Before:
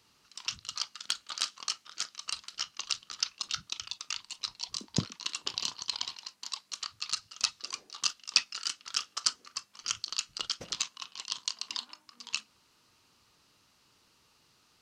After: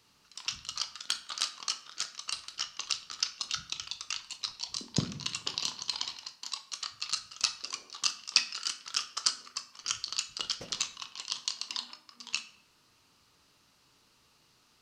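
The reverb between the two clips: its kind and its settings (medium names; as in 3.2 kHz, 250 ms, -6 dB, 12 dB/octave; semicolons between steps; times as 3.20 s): simulated room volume 130 m³, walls mixed, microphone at 0.34 m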